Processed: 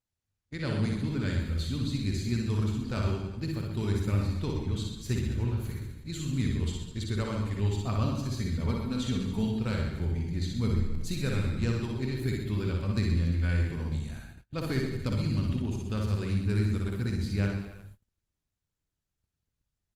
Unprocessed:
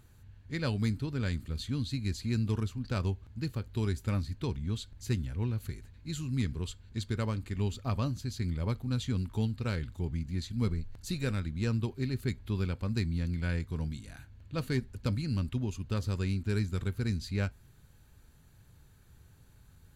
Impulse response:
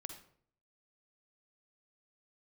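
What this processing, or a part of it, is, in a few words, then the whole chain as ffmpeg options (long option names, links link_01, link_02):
speakerphone in a meeting room: -filter_complex "[0:a]asettb=1/sr,asplit=3[link_01][link_02][link_03];[link_01]atrim=end=8.404[link_04];[link_02]atrim=start=8.4:end=9.46,asetpts=PTS-STARTPTS,afade=type=in:duration=0.004:curve=qsin,afade=type=out:start_time=1.056:duration=0.004:curve=qsin,aecho=1:1:4.4:0.41,atrim=end_sample=46746[link_05];[link_03]atrim=start=9.456[link_06];[link_04][link_05]acrossfade=duration=0.004:curve1=hsin:curve2=qsin[link_07];[link_07][link_06]acrossfade=duration=0.004:curve1=qsin:curve2=hsin,aecho=1:1:60|126|198.6|278.5|366.3:0.631|0.398|0.251|0.158|0.1[link_08];[1:a]atrim=start_sample=2205[link_09];[link_08][link_09]afir=irnorm=-1:irlink=0,dynaudnorm=framelen=140:gausssize=9:maxgain=4.5dB,agate=range=-31dB:threshold=-46dB:ratio=16:detection=peak" -ar 48000 -c:a libopus -b:a 32k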